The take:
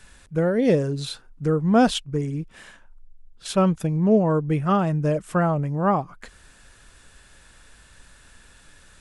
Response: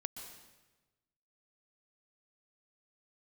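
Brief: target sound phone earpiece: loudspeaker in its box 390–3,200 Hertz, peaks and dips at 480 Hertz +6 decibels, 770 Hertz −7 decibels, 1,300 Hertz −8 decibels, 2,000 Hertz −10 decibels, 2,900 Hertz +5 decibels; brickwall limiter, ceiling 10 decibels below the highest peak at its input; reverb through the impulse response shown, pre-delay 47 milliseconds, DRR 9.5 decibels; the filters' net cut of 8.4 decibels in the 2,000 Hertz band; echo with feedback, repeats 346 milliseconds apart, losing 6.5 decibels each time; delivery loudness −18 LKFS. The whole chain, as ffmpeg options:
-filter_complex "[0:a]equalizer=frequency=2000:width_type=o:gain=-5.5,alimiter=limit=-17.5dB:level=0:latency=1,aecho=1:1:346|692|1038|1384|1730|2076:0.473|0.222|0.105|0.0491|0.0231|0.0109,asplit=2[link_01][link_02];[1:a]atrim=start_sample=2205,adelay=47[link_03];[link_02][link_03]afir=irnorm=-1:irlink=0,volume=-7.5dB[link_04];[link_01][link_04]amix=inputs=2:normalize=0,highpass=390,equalizer=frequency=480:width_type=q:width=4:gain=6,equalizer=frequency=770:width_type=q:width=4:gain=-7,equalizer=frequency=1300:width_type=q:width=4:gain=-8,equalizer=frequency=2000:width_type=q:width=4:gain=-10,equalizer=frequency=2900:width_type=q:width=4:gain=5,lowpass=frequency=3200:width=0.5412,lowpass=frequency=3200:width=1.3066,volume=11dB"

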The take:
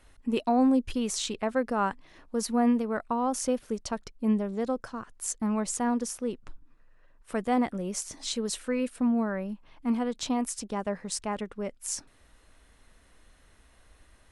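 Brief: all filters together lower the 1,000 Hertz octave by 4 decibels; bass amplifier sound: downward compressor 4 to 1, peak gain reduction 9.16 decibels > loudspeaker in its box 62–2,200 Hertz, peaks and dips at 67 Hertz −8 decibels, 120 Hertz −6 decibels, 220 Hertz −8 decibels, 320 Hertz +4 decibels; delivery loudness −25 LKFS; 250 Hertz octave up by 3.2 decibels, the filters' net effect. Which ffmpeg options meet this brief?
ffmpeg -i in.wav -af "equalizer=frequency=250:width_type=o:gain=8,equalizer=frequency=1000:width_type=o:gain=-6.5,acompressor=threshold=-23dB:ratio=4,highpass=frequency=62:width=0.5412,highpass=frequency=62:width=1.3066,equalizer=frequency=67:width_type=q:width=4:gain=-8,equalizer=frequency=120:width_type=q:width=4:gain=-6,equalizer=frequency=220:width_type=q:width=4:gain=-8,equalizer=frequency=320:width_type=q:width=4:gain=4,lowpass=frequency=2200:width=0.5412,lowpass=frequency=2200:width=1.3066,volume=8dB" out.wav

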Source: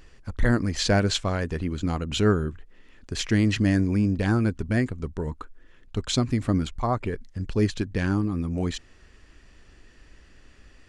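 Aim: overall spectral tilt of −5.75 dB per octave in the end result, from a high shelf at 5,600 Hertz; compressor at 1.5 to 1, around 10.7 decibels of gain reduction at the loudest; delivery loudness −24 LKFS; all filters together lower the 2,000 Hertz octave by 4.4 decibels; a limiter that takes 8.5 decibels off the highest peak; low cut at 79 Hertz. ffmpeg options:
ffmpeg -i in.wav -af "highpass=79,equalizer=frequency=2000:width_type=o:gain=-5,highshelf=frequency=5600:gain=-7,acompressor=threshold=-48dB:ratio=1.5,volume=16dB,alimiter=limit=-13dB:level=0:latency=1" out.wav

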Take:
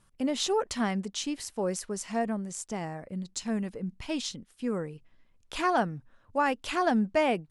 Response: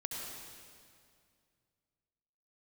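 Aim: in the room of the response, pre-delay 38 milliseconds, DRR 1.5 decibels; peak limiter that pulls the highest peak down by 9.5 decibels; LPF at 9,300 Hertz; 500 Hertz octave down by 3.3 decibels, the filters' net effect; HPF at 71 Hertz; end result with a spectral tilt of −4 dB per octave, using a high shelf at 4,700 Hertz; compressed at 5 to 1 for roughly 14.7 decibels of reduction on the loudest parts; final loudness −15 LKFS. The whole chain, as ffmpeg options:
-filter_complex "[0:a]highpass=71,lowpass=9300,equalizer=frequency=500:width_type=o:gain=-4.5,highshelf=frequency=4700:gain=5.5,acompressor=threshold=-40dB:ratio=5,alimiter=level_in=9.5dB:limit=-24dB:level=0:latency=1,volume=-9.5dB,asplit=2[link_01][link_02];[1:a]atrim=start_sample=2205,adelay=38[link_03];[link_02][link_03]afir=irnorm=-1:irlink=0,volume=-2.5dB[link_04];[link_01][link_04]amix=inputs=2:normalize=0,volume=26.5dB"

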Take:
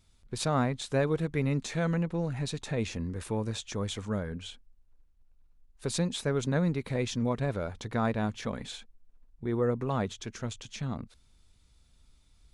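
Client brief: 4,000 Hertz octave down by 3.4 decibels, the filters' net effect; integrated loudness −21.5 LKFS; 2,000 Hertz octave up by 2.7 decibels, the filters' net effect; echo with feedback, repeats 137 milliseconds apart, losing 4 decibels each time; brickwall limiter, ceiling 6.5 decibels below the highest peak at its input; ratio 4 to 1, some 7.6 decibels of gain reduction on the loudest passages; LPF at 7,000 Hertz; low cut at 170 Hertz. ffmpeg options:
ffmpeg -i in.wav -af "highpass=170,lowpass=7000,equalizer=frequency=2000:width_type=o:gain=4.5,equalizer=frequency=4000:width_type=o:gain=-5,acompressor=threshold=-32dB:ratio=4,alimiter=level_in=2.5dB:limit=-24dB:level=0:latency=1,volume=-2.5dB,aecho=1:1:137|274|411|548|685|822|959|1096|1233:0.631|0.398|0.25|0.158|0.0994|0.0626|0.0394|0.0249|0.0157,volume=16dB" out.wav

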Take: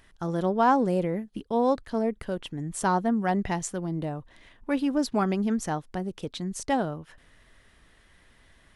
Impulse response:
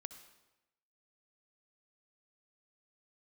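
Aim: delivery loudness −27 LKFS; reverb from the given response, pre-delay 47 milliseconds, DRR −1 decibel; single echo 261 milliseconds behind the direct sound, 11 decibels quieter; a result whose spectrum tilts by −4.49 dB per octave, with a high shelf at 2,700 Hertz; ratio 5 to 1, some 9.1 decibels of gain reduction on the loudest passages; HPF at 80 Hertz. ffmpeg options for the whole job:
-filter_complex "[0:a]highpass=80,highshelf=frequency=2700:gain=9,acompressor=threshold=-26dB:ratio=5,aecho=1:1:261:0.282,asplit=2[link_01][link_02];[1:a]atrim=start_sample=2205,adelay=47[link_03];[link_02][link_03]afir=irnorm=-1:irlink=0,volume=5.5dB[link_04];[link_01][link_04]amix=inputs=2:normalize=0,volume=0.5dB"

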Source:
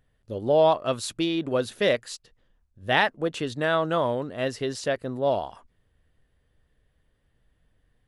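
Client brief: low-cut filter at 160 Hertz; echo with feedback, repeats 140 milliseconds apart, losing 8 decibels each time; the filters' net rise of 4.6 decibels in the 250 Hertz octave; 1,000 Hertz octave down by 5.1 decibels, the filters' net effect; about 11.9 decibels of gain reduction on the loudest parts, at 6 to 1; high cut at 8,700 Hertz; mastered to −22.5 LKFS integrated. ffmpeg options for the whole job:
ffmpeg -i in.wav -af "highpass=160,lowpass=8700,equalizer=frequency=250:width_type=o:gain=7.5,equalizer=frequency=1000:width_type=o:gain=-7.5,acompressor=threshold=-30dB:ratio=6,aecho=1:1:140|280|420|560|700:0.398|0.159|0.0637|0.0255|0.0102,volume=12dB" out.wav

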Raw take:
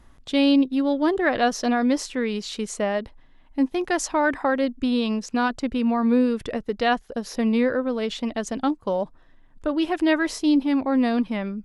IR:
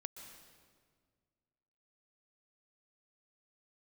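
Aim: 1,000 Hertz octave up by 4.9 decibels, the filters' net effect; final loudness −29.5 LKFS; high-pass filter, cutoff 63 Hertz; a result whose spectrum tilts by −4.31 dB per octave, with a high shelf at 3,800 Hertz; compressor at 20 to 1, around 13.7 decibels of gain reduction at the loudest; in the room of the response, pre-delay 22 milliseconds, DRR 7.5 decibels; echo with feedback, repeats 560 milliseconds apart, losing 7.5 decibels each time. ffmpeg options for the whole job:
-filter_complex "[0:a]highpass=63,equalizer=frequency=1000:width_type=o:gain=7,highshelf=frequency=3800:gain=-3,acompressor=threshold=-27dB:ratio=20,aecho=1:1:560|1120|1680|2240|2800:0.422|0.177|0.0744|0.0312|0.0131,asplit=2[link_01][link_02];[1:a]atrim=start_sample=2205,adelay=22[link_03];[link_02][link_03]afir=irnorm=-1:irlink=0,volume=-4dB[link_04];[link_01][link_04]amix=inputs=2:normalize=0,volume=1dB"

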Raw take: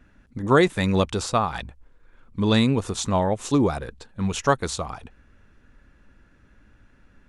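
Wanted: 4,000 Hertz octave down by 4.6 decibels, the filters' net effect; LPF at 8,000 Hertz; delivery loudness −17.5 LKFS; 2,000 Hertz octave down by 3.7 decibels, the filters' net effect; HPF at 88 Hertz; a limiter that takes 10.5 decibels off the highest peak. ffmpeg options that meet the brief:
ffmpeg -i in.wav -af "highpass=88,lowpass=8000,equalizer=frequency=2000:width_type=o:gain=-4,equalizer=frequency=4000:width_type=o:gain=-4,volume=10.5dB,alimiter=limit=-5dB:level=0:latency=1" out.wav

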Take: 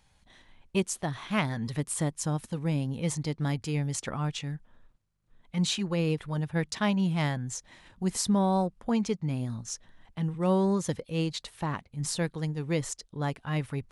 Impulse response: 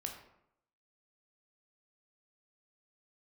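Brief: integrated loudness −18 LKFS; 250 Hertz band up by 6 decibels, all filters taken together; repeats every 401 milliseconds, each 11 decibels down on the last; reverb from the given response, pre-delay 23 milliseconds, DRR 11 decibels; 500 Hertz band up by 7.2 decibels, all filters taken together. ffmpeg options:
-filter_complex "[0:a]equalizer=frequency=250:width_type=o:gain=7.5,equalizer=frequency=500:width_type=o:gain=6.5,aecho=1:1:401|802|1203:0.282|0.0789|0.0221,asplit=2[link_01][link_02];[1:a]atrim=start_sample=2205,adelay=23[link_03];[link_02][link_03]afir=irnorm=-1:irlink=0,volume=-10dB[link_04];[link_01][link_04]amix=inputs=2:normalize=0,volume=7dB"

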